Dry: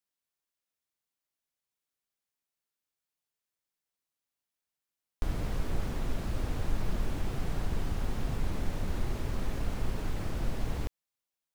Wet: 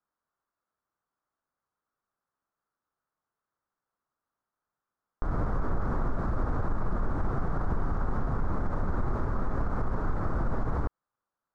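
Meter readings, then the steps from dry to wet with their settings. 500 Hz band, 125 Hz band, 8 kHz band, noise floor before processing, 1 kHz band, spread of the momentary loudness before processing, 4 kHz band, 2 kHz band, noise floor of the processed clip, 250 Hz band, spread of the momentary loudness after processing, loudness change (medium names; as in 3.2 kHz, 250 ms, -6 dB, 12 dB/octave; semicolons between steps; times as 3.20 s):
+5.0 dB, +3.5 dB, under -15 dB, under -85 dBFS, +9.0 dB, 1 LU, under -15 dB, +2.5 dB, under -85 dBFS, +4.0 dB, 1 LU, +3.5 dB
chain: low-pass 5.9 kHz 12 dB/octave; resonant high shelf 1.9 kHz -13.5 dB, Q 3; peak limiter -26.5 dBFS, peak gain reduction 9.5 dB; trim +6.5 dB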